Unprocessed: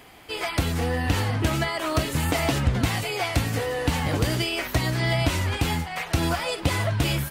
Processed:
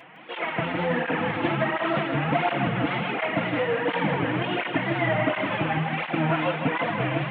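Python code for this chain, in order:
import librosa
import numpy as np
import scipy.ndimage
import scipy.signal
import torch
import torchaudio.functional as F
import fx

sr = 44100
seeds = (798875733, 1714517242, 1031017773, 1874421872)

p1 = fx.cvsd(x, sr, bps=16000)
p2 = scipy.signal.sosfilt(scipy.signal.butter(4, 170.0, 'highpass', fs=sr, output='sos'), p1)
p3 = fx.peak_eq(p2, sr, hz=390.0, db=-7.0, octaves=0.26)
p4 = p3 + 0.32 * np.pad(p3, (int(5.9 * sr / 1000.0), 0))[:len(p3)]
p5 = fx.wow_flutter(p4, sr, seeds[0], rate_hz=2.1, depth_cents=120.0)
p6 = p5 + fx.echo_feedback(p5, sr, ms=160, feedback_pct=56, wet_db=-5.5, dry=0)
p7 = fx.flanger_cancel(p6, sr, hz=1.4, depth_ms=5.5)
y = p7 * 10.0 ** (5.0 / 20.0)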